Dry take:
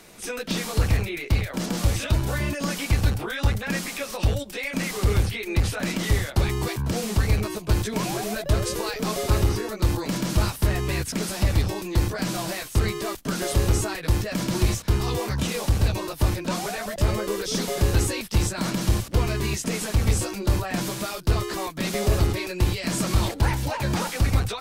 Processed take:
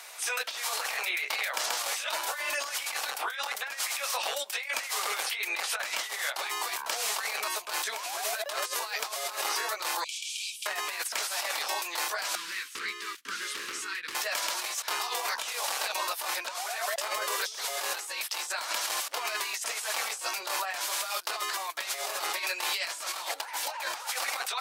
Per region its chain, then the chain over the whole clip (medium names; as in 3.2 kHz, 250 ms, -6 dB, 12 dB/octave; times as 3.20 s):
10.04–10.66 s: rippled Chebyshev high-pass 2.3 kHz, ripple 6 dB + distance through air 56 m
12.35–14.15 s: Butterworth band-stop 680 Hz, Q 0.53 + tilt EQ -4 dB/octave + loudspeaker Doppler distortion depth 0.33 ms
whole clip: high-pass 730 Hz 24 dB/octave; compressor with a negative ratio -35 dBFS, ratio -0.5; trim +3 dB